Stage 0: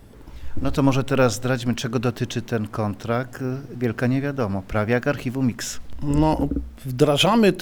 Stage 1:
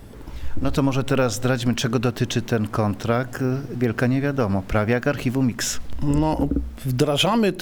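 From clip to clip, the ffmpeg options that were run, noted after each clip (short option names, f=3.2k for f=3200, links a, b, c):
-af "acompressor=threshold=-21dB:ratio=6,volume=5dB"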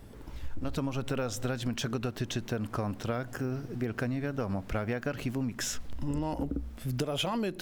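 -af "acompressor=threshold=-21dB:ratio=3,volume=-8dB"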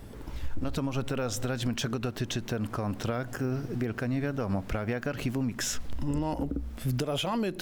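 -af "alimiter=level_in=1.5dB:limit=-24dB:level=0:latency=1:release=185,volume=-1.5dB,volume=4.5dB"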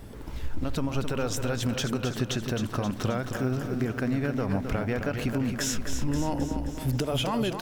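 -af "aecho=1:1:264|528|792|1056|1320|1584|1848|2112:0.422|0.249|0.147|0.0866|0.0511|0.0301|0.0178|0.0105,volume=1.5dB"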